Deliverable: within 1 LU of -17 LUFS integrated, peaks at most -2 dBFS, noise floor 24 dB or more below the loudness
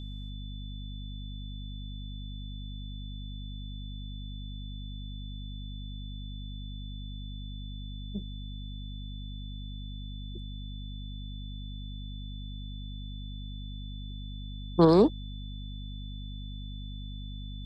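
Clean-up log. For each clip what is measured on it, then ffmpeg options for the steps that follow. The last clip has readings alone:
hum 50 Hz; harmonics up to 250 Hz; hum level -37 dBFS; steady tone 3500 Hz; tone level -49 dBFS; loudness -36.0 LUFS; peak -10.0 dBFS; loudness target -17.0 LUFS
-> -af "bandreject=f=50:t=h:w=6,bandreject=f=100:t=h:w=6,bandreject=f=150:t=h:w=6,bandreject=f=200:t=h:w=6,bandreject=f=250:t=h:w=6"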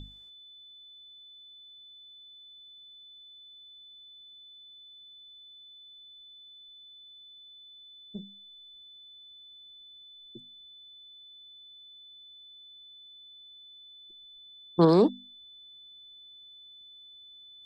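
hum none; steady tone 3500 Hz; tone level -49 dBFS
-> -af "bandreject=f=3.5k:w=30"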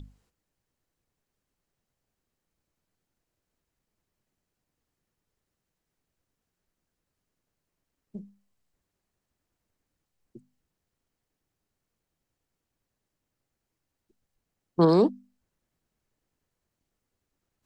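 steady tone none; loudness -23.5 LUFS; peak -10.5 dBFS; loudness target -17.0 LUFS
-> -af "volume=6.5dB"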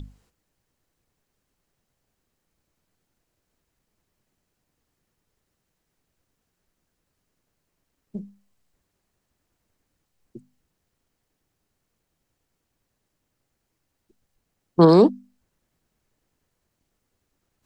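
loudness -17.0 LUFS; peak -4.0 dBFS; noise floor -78 dBFS

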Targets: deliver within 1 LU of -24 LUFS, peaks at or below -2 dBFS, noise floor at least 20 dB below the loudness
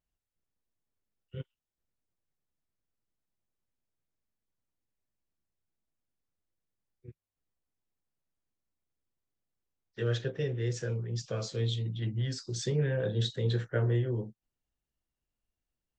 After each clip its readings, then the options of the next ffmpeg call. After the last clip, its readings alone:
loudness -32.5 LUFS; peak -16.5 dBFS; loudness target -24.0 LUFS
-> -af "volume=8.5dB"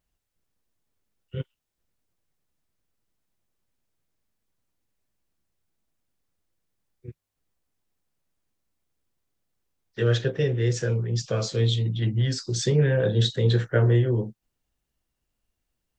loudness -24.0 LUFS; peak -8.0 dBFS; noise floor -82 dBFS

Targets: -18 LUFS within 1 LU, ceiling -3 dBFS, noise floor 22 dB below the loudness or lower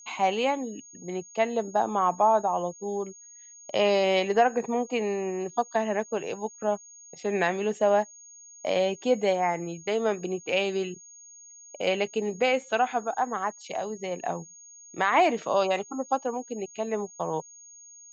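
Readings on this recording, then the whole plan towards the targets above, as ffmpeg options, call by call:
steady tone 6600 Hz; tone level -47 dBFS; loudness -27.5 LUFS; peak -11.0 dBFS; loudness target -18.0 LUFS
-> -af "bandreject=f=6.6k:w=30"
-af "volume=9.5dB,alimiter=limit=-3dB:level=0:latency=1"

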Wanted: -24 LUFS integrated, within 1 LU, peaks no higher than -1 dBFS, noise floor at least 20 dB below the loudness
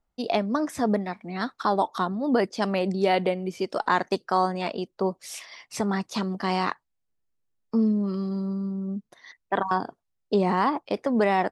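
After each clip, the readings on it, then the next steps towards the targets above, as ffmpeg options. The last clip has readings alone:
loudness -26.5 LUFS; peak -9.0 dBFS; loudness target -24.0 LUFS
-> -af "volume=2.5dB"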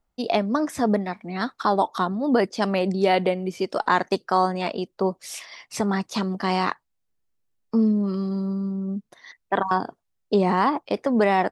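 loudness -24.0 LUFS; peak -6.5 dBFS; noise floor -75 dBFS

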